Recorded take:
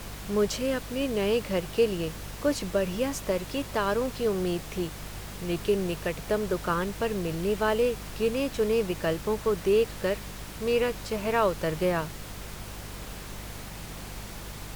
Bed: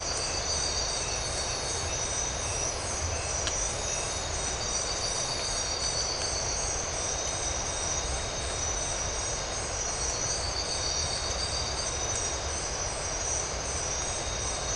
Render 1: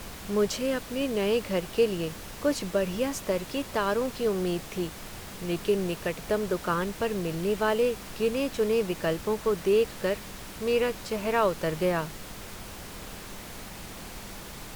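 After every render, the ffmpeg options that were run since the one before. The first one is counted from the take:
-af "bandreject=f=50:t=h:w=4,bandreject=f=100:t=h:w=4,bandreject=f=150:t=h:w=4"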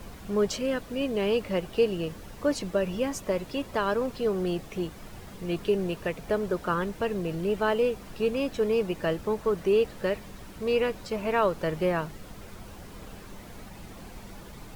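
-af "afftdn=nr=9:nf=-42"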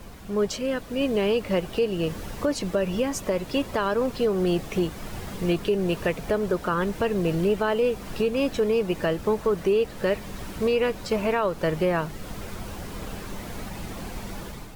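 -af "dynaudnorm=f=760:g=3:m=9dB,alimiter=limit=-14.5dB:level=0:latency=1:release=364"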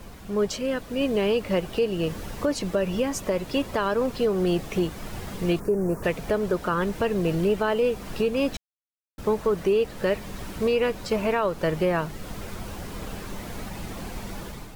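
-filter_complex "[0:a]asplit=3[a][b][c];[a]afade=t=out:st=5.59:d=0.02[d];[b]asuperstop=centerf=3300:order=4:qfactor=0.63,afade=t=in:st=5.59:d=0.02,afade=t=out:st=6.02:d=0.02[e];[c]afade=t=in:st=6.02:d=0.02[f];[d][e][f]amix=inputs=3:normalize=0,asplit=3[g][h][i];[g]atrim=end=8.57,asetpts=PTS-STARTPTS,afade=t=out:st=8.566:d=0.004:c=hsin[j];[h]atrim=start=8.57:end=9.18,asetpts=PTS-STARTPTS,volume=0[k];[i]atrim=start=9.18,asetpts=PTS-STARTPTS,afade=t=in:d=0.004:c=hsin[l];[j][k][l]concat=n=3:v=0:a=1"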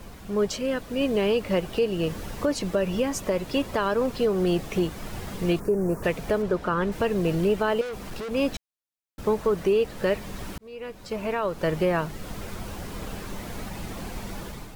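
-filter_complex "[0:a]asettb=1/sr,asplit=3[a][b][c];[a]atrim=end=6.424[d];[b]atrim=start=6.42:end=6.92,asetpts=PTS-STARTPTS,afade=t=in:d=0.004:c=qsin,afade=t=out:st=0.496:d=0.004:c=qsin,lowpass=f=3.6k:p=1[e];[c]atrim=start=6.916[f];[d][e]acrossfade=d=0.004:c1=hsin:c2=qsin[g];[g][f]acrossfade=d=0.004:c1=qsin:c2=hsin,asettb=1/sr,asplit=3[h][i][j];[h]atrim=end=7.814[k];[i]atrim=start=7.81:end=8.31,asetpts=PTS-STARTPTS,afade=t=in:d=0.004:c=qsin,afade=t=out:st=0.496:d=0.004:c=qsin,asoftclip=type=hard:threshold=-31.5dB[l];[j]atrim=start=8.306[m];[k][l]acrossfade=d=0.004:c1=hsin:c2=qsin[n];[n][m]acrossfade=d=0.004:c1=qsin:c2=hsin,asplit=2[o][p];[o]atrim=end=10.58,asetpts=PTS-STARTPTS,afade=t=out:st=10.576:d=0.004:c=hsin[q];[p]atrim=start=10.58,asetpts=PTS-STARTPTS,afade=t=in:d=1.15[r];[q][r]concat=n=2:v=0:a=1"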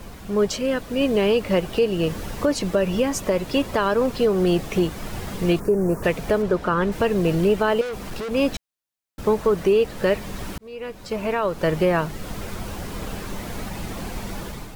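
-af "volume=4dB"

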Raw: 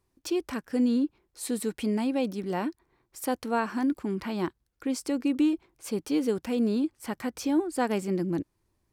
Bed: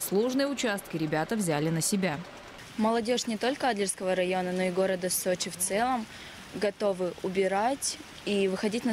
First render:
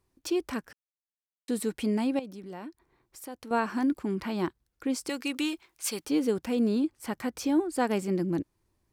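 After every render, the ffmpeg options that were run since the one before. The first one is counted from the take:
-filter_complex "[0:a]asettb=1/sr,asplit=3[a][b][c];[a]atrim=end=2.194[d];[b]atrim=start=2.19:end=3.51,asetpts=PTS-STARTPTS,afade=t=in:d=0.004:c=qsin,afade=t=out:st=1.316:d=0.004:c=qsin,acompressor=threshold=-47dB:ratio=2:attack=3.2:release=140:knee=1:detection=peak[e];[c]atrim=start=3.506[f];[d][e]acrossfade=d=0.004:c1=hsin:c2=qsin[g];[g][f]acrossfade=d=0.004:c1=qsin:c2=hsin,asettb=1/sr,asplit=3[h][i][j];[h]atrim=end=5.094[k];[i]atrim=start=5.09:end=6.05,asetpts=PTS-STARTPTS,afade=t=in:d=0.004:c=qsin,afade=t=out:st=0.956:d=0.004:c=qsin,tiltshelf=f=850:g=-10[l];[j]atrim=start=6.046[m];[k][l]acrossfade=d=0.004:c1=hsin:c2=qsin[n];[n][m]acrossfade=d=0.004:c1=qsin:c2=hsin,asplit=3[o][p][q];[o]atrim=end=0.73,asetpts=PTS-STARTPTS,afade=t=out:st=0.726:d=0.004:c=hsin[r];[p]atrim=start=0.73:end=1.48,asetpts=PTS-STARTPTS,volume=0[s];[q]atrim=start=1.48,asetpts=PTS-STARTPTS,afade=t=in:d=0.004:c=hsin[t];[r][s][t]concat=n=3:v=0:a=1"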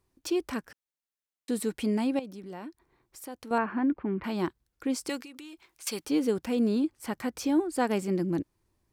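-filter_complex "[0:a]asettb=1/sr,asplit=3[a][b][c];[a]atrim=end=3.584[d];[b]atrim=start=3.58:end=4.24,asetpts=PTS-STARTPTS,afade=t=in:d=0.004:c=qsin,afade=t=out:st=0.656:d=0.004:c=qsin,lowpass=f=2.5k:w=0.5412,lowpass=f=2.5k:w=1.3066[e];[c]atrim=start=4.236[f];[d][e]acrossfade=d=0.004:c1=hsin:c2=qsin[g];[g][f]acrossfade=d=0.004:c1=qsin:c2=hsin,asettb=1/sr,asplit=3[h][i][j];[h]atrim=end=5.204[k];[i]atrim=start=5.2:end=5.87,asetpts=PTS-STARTPTS,afade=t=in:d=0.004:c=qsin,afade=t=out:st=0.666:d=0.004:c=qsin,acompressor=threshold=-42dB:ratio=16:attack=3.2:release=140:knee=1:detection=peak[l];[j]atrim=start=5.866[m];[k][l]acrossfade=d=0.004:c1=hsin:c2=qsin[n];[n][m]acrossfade=d=0.004:c1=qsin:c2=hsin"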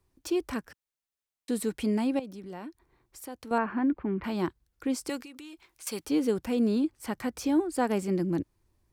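-filter_complex "[0:a]acrossover=split=100|1800|6600[a][b][c][d];[a]acontrast=38[e];[c]alimiter=level_in=11dB:limit=-24dB:level=0:latency=1,volume=-11dB[f];[e][b][f][d]amix=inputs=4:normalize=0"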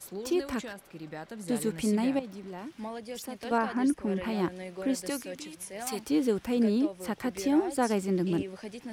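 -filter_complex "[1:a]volume=-12.5dB[a];[0:a][a]amix=inputs=2:normalize=0"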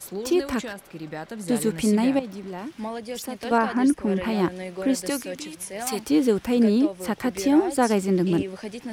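-af "volume=6.5dB"

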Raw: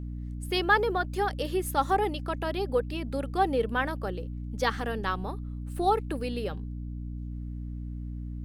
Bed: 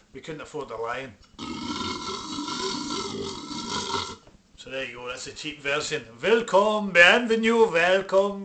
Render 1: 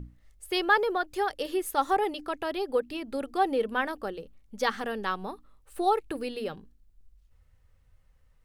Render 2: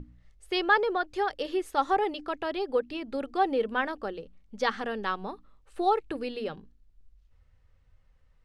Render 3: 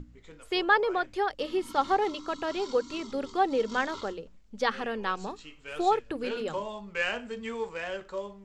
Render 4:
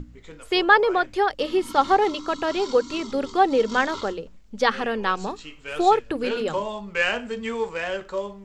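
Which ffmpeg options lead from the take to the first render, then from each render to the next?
-af "bandreject=f=60:t=h:w=6,bandreject=f=120:t=h:w=6,bandreject=f=180:t=h:w=6,bandreject=f=240:t=h:w=6,bandreject=f=300:t=h:w=6"
-af "lowpass=5.6k,bandreject=f=60:t=h:w=6,bandreject=f=120:t=h:w=6,bandreject=f=180:t=h:w=6"
-filter_complex "[1:a]volume=-15dB[a];[0:a][a]amix=inputs=2:normalize=0"
-af "volume=7dB"

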